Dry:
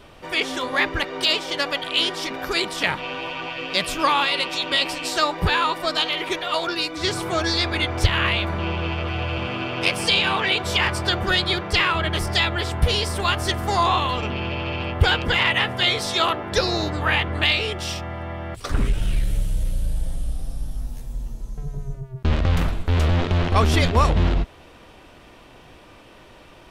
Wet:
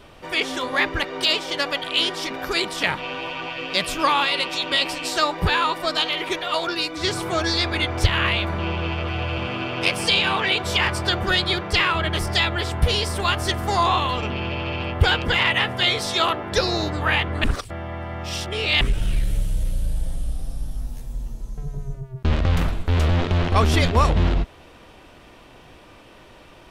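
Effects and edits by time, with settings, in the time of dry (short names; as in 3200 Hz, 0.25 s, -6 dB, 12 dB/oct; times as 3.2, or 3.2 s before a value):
17.44–18.81 reverse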